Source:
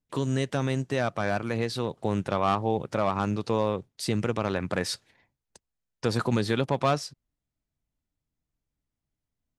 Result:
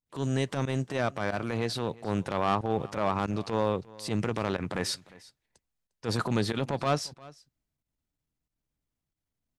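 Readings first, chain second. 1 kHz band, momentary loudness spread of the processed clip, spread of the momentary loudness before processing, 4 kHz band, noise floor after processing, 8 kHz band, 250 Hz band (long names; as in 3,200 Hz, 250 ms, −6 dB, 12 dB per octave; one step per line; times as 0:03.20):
−2.0 dB, 5 LU, 5 LU, −1.0 dB, below −85 dBFS, −1.0 dB, −2.5 dB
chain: fake sidechain pumping 92 BPM, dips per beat 1, −22 dB, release 73 ms
transient designer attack −11 dB, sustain +1 dB
single-tap delay 352 ms −21.5 dB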